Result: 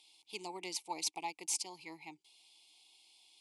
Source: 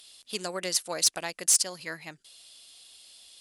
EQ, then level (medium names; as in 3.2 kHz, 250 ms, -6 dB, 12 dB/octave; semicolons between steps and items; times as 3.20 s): vowel filter u; treble shelf 4.6 kHz +11.5 dB; static phaser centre 630 Hz, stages 4; +10.0 dB